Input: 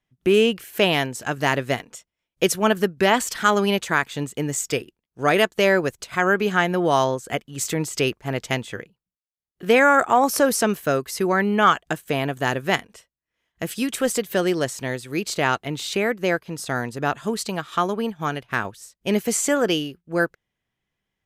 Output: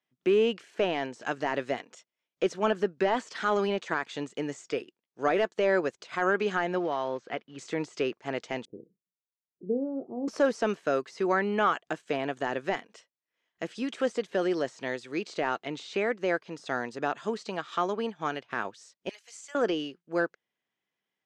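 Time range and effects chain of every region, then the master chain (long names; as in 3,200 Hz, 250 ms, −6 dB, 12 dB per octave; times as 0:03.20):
0:06.78–0:07.59: one scale factor per block 5 bits + downward compressor, threshold −20 dBFS + high-frequency loss of the air 230 metres
0:08.65–0:10.28: inverse Chebyshev low-pass filter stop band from 1,700 Hz, stop band 70 dB + double-tracking delay 33 ms −11.5 dB
0:19.09–0:19.55: high-pass filter 880 Hz + first difference
whole clip: high-pass filter 270 Hz 12 dB per octave; de-essing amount 85%; low-pass filter 6,800 Hz 24 dB per octave; level −4 dB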